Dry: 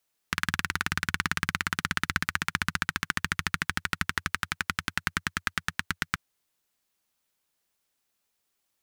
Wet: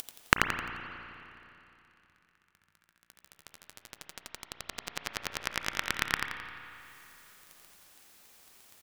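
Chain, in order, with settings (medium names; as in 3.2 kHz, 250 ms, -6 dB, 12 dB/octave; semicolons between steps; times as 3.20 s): upward compressor, threshold -34 dBFS; inverted gate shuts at -17 dBFS, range -39 dB; waveshaping leveller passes 5; feedback delay 87 ms, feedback 41%, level -5.5 dB; spring tank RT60 2.9 s, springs 33/52 ms, chirp 55 ms, DRR 7.5 dB; trim +4 dB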